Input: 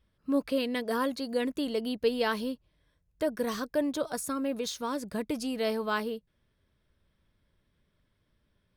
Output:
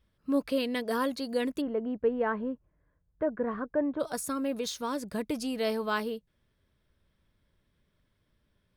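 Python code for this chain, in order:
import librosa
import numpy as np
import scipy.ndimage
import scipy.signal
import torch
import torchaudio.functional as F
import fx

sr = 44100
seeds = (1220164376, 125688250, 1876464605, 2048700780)

y = fx.lowpass(x, sr, hz=1700.0, slope=24, at=(1.6, 3.99), fade=0.02)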